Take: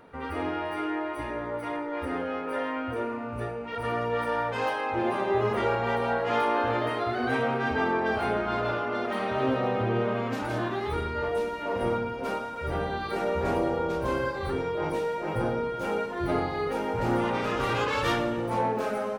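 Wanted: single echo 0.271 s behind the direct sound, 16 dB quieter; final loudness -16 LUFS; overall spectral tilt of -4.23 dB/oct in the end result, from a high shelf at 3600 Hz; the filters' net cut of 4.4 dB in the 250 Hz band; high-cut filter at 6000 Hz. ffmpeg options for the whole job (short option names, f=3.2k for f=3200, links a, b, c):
-af "lowpass=6k,equalizer=f=250:t=o:g=-6,highshelf=f=3.6k:g=-3,aecho=1:1:271:0.158,volume=14dB"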